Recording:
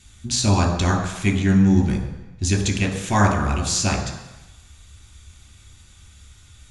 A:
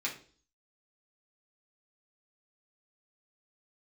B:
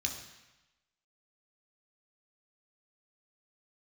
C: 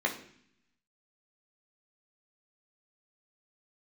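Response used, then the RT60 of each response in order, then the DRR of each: B; 0.45, 1.0, 0.60 seconds; −4.0, 1.5, 0.0 decibels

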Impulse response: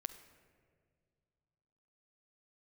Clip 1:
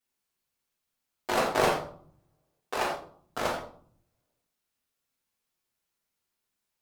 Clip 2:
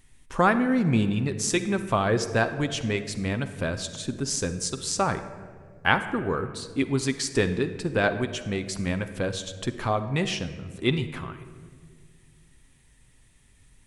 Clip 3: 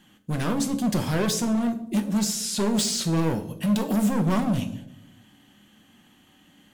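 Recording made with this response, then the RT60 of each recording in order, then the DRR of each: 2; 0.55 s, 2.0 s, non-exponential decay; −9.5, 8.5, 5.0 decibels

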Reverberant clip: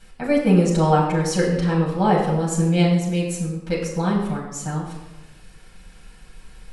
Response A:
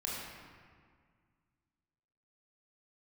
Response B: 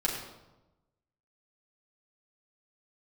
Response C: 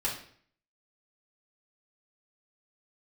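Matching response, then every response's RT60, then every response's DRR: B; 1.9, 1.0, 0.55 seconds; −5.0, −5.0, −6.5 decibels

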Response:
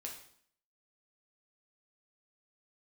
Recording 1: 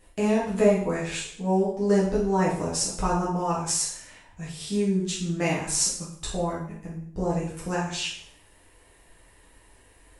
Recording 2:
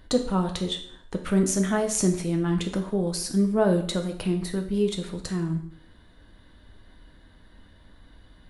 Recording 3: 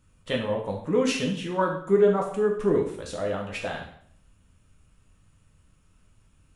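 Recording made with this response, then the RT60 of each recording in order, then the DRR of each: 3; 0.60, 0.60, 0.60 seconds; −7.5, 4.0, −1.0 decibels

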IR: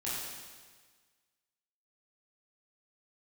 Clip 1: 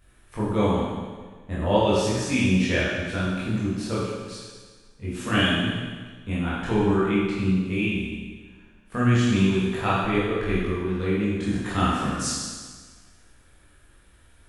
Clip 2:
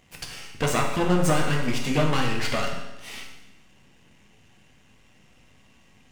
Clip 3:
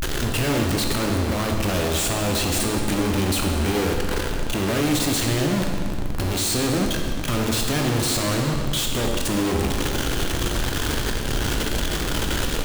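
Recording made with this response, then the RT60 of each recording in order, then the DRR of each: 1; 1.5, 1.0, 2.1 seconds; −9.0, 0.0, 1.5 decibels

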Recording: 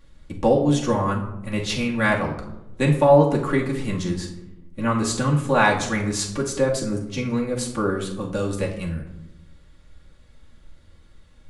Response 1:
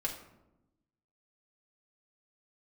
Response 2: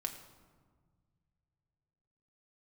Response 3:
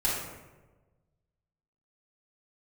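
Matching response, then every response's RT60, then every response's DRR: 1; 0.95, 1.6, 1.2 seconds; −3.5, 3.5, −9.0 decibels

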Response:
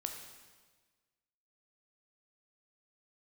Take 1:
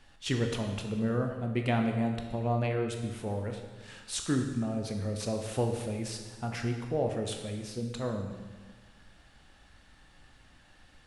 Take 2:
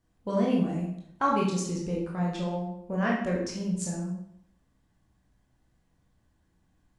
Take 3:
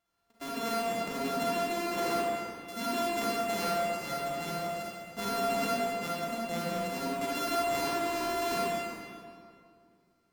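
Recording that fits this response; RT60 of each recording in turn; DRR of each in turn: 1; 1.4, 0.75, 2.3 seconds; 3.0, −4.0, −6.5 decibels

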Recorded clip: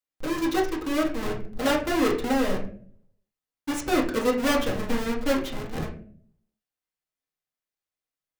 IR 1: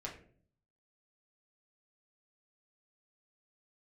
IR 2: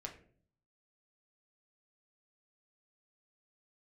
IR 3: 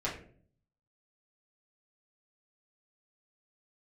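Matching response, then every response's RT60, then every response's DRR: 1; 0.50, 0.50, 0.50 seconds; −3.5, 0.5, −7.5 decibels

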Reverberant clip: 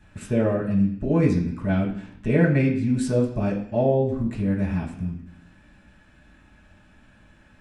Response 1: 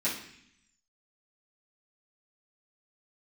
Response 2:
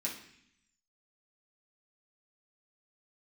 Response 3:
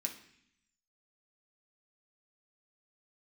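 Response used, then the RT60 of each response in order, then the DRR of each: 2; 0.65, 0.65, 0.65 seconds; −12.0, −5.5, 1.0 decibels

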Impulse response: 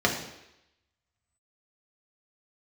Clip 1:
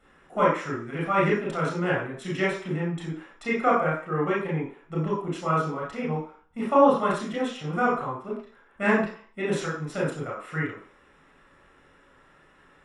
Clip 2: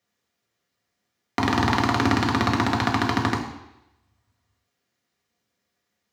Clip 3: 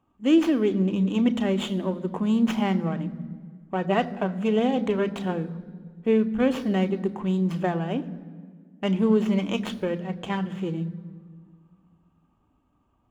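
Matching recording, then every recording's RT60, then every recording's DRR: 2; 0.45, 0.85, 1.8 seconds; −5.0, −1.0, 10.0 decibels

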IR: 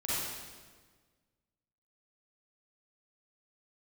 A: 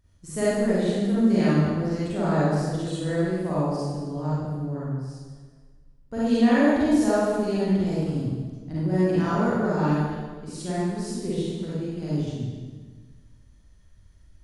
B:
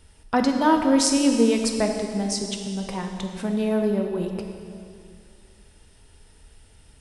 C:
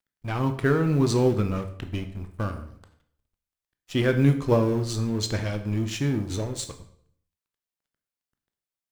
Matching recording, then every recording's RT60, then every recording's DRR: A; 1.5, 2.4, 0.65 seconds; −10.0, 3.5, 7.0 decibels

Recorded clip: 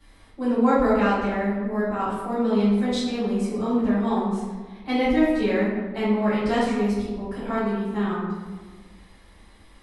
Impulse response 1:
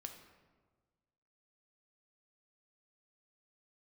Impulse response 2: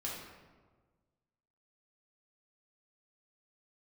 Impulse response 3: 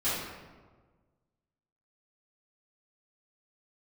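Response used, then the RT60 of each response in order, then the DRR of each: 3; 1.4, 1.4, 1.4 seconds; 4.5, −5.0, −14.0 decibels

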